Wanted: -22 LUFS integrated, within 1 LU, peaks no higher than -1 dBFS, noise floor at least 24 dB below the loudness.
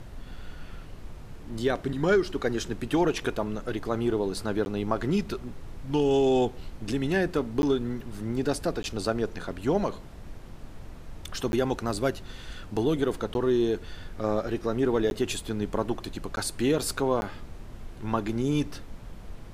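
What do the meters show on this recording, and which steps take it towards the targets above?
dropouts 8; longest dropout 11 ms; noise floor -43 dBFS; noise floor target -53 dBFS; loudness -28.5 LUFS; peak level -11.0 dBFS; loudness target -22.0 LUFS
-> interpolate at 4.65/7.62/8.83/11.52/13.34/15.10/16.36/17.21 s, 11 ms; noise print and reduce 10 dB; trim +6.5 dB

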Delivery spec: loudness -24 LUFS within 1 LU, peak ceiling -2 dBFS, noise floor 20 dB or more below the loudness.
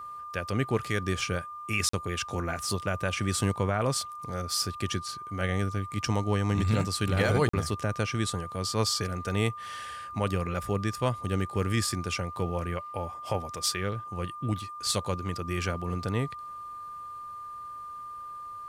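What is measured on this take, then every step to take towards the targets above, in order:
dropouts 2; longest dropout 44 ms; steady tone 1.2 kHz; tone level -38 dBFS; loudness -30.5 LUFS; peak level -14.5 dBFS; loudness target -24.0 LUFS
-> interpolate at 1.89/7.49 s, 44 ms; band-stop 1.2 kHz, Q 30; trim +6.5 dB

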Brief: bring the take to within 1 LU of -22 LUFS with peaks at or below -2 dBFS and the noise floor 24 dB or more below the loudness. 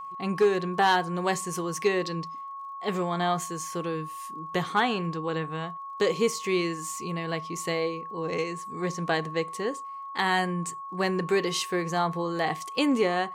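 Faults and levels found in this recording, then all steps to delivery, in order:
tick rate 37 per s; steady tone 1.1 kHz; tone level -36 dBFS; loudness -28.5 LUFS; peak level -12.0 dBFS; loudness target -22.0 LUFS
-> de-click; band-stop 1.1 kHz, Q 30; trim +6.5 dB

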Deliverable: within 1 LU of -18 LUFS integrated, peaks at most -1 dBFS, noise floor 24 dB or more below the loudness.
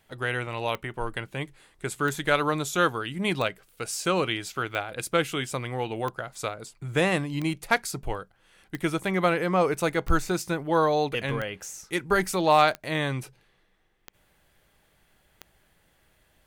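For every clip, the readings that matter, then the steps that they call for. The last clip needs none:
clicks found 12; loudness -27.0 LUFS; peak level -8.5 dBFS; loudness target -18.0 LUFS
-> de-click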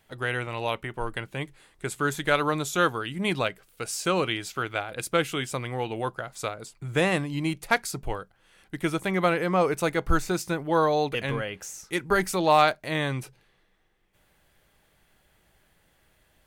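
clicks found 0; loudness -27.0 LUFS; peak level -8.5 dBFS; loudness target -18.0 LUFS
-> trim +9 dB; peak limiter -1 dBFS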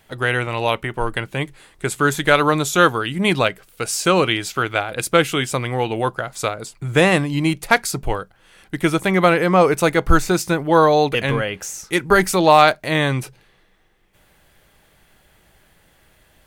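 loudness -18.5 LUFS; peak level -1.0 dBFS; noise floor -57 dBFS

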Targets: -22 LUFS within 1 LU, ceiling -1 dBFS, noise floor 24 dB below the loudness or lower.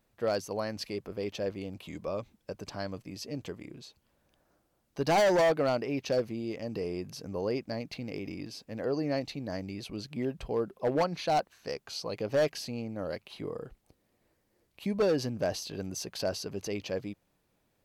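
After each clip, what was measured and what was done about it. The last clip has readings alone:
clipped samples 1.4%; clipping level -21.5 dBFS; loudness -33.0 LUFS; peak level -21.5 dBFS; loudness target -22.0 LUFS
-> clip repair -21.5 dBFS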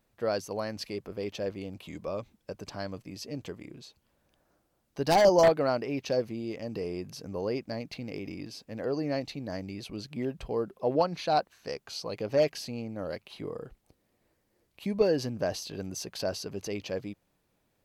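clipped samples 0.0%; loudness -31.5 LUFS; peak level -12.5 dBFS; loudness target -22.0 LUFS
-> trim +9.5 dB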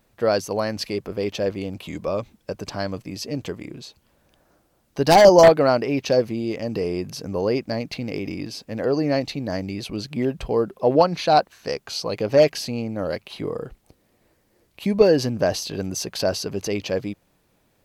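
loudness -22.0 LUFS; peak level -3.0 dBFS; noise floor -65 dBFS

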